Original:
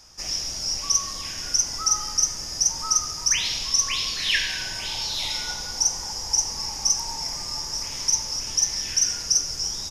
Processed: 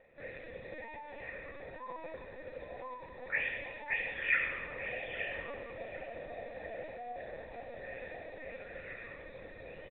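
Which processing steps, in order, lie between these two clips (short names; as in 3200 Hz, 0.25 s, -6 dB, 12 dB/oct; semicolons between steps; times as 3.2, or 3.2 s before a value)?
pitch shift by moving bins -4 st; LPC vocoder at 8 kHz pitch kept; vocal tract filter e; feedback echo 0.809 s, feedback 52%, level -17.5 dB; gain +10.5 dB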